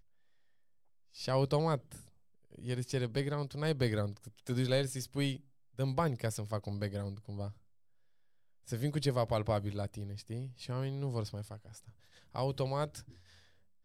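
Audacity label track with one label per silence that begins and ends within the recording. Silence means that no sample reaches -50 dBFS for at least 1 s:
7.530000	8.670000	silence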